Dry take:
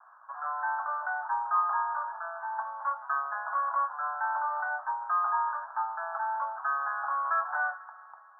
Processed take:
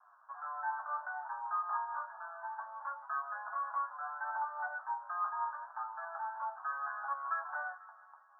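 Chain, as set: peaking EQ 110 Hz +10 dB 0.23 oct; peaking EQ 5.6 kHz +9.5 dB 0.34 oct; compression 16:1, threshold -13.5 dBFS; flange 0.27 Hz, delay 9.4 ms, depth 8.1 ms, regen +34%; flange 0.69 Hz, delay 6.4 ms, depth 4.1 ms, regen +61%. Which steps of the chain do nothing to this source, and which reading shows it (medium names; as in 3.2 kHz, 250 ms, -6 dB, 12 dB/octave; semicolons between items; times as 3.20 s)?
peaking EQ 110 Hz: input has nothing below 540 Hz; peaking EQ 5.6 kHz: input has nothing above 1.7 kHz; compression, threshold -13.5 dBFS: peak at its input -16.5 dBFS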